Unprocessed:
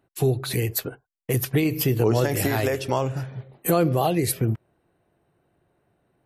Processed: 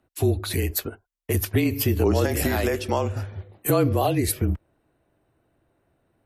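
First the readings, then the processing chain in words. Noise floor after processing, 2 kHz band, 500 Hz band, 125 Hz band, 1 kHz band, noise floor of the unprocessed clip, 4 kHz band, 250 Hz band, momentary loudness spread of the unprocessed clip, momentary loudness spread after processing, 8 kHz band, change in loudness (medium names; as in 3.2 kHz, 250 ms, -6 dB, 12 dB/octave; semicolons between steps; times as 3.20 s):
-72 dBFS, 0.0 dB, -0.5 dB, -0.5 dB, -1.0 dB, -73 dBFS, 0.0 dB, +0.5 dB, 11 LU, 11 LU, 0.0 dB, 0.0 dB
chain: frequency shift -32 Hz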